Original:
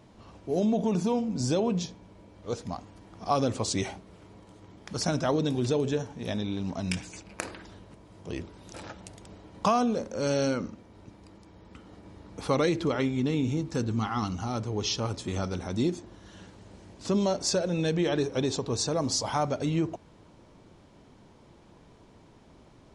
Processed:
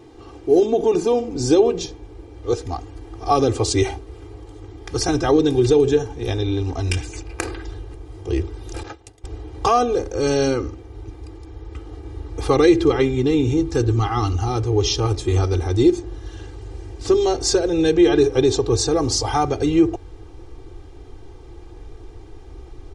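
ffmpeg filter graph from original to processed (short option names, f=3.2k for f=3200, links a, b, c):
-filter_complex "[0:a]asettb=1/sr,asplit=3[a][b][c];[a]atrim=end=8.834[d];[b]atrim=start=8.83:end=9.24,asetpts=PTS-STARTPTS,afade=t=in:d=0.004:c=qsin,afade=t=out:st=0.406:d=0.004:c=qsin,highpass=f=170:p=1,agate=range=-33dB:threshold=-42dB:ratio=3:release=100:detection=peak[e];[c]atrim=start=9.236[f];[d][e]acrossfade=d=0.004:c1=hsin:c2=qsin[g];[g][f]acrossfade=d=0.004:c1=qsin:c2=hsin,equalizer=f=340:t=o:w=0.92:g=8.5,aecho=1:1:2.5:0.95,asubboost=boost=9:cutoff=67,volume=4.5dB"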